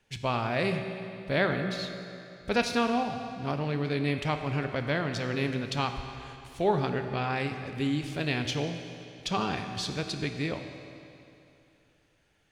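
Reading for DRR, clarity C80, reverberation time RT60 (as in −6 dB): 6.0 dB, 7.5 dB, 2.8 s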